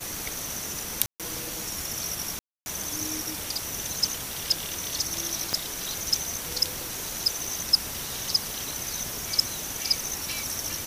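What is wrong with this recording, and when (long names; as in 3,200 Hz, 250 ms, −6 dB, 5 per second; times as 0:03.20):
0:01.06–0:01.20: drop-out 137 ms
0:02.39–0:02.66: drop-out 270 ms
0:05.53: click −12 dBFS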